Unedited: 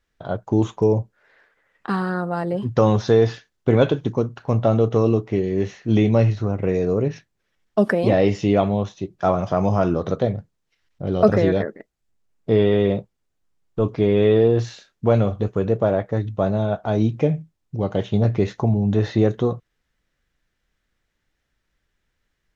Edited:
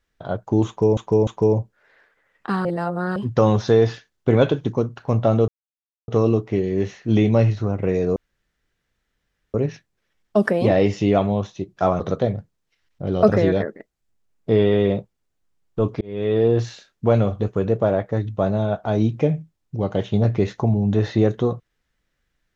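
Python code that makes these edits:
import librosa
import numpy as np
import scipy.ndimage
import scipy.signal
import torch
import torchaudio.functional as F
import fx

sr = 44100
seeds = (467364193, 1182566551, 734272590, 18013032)

y = fx.edit(x, sr, fx.repeat(start_s=0.67, length_s=0.3, count=3),
    fx.reverse_span(start_s=2.05, length_s=0.51),
    fx.insert_silence(at_s=4.88, length_s=0.6),
    fx.insert_room_tone(at_s=6.96, length_s=1.38),
    fx.cut(start_s=9.42, length_s=0.58),
    fx.fade_in_span(start_s=14.01, length_s=0.51), tone=tone)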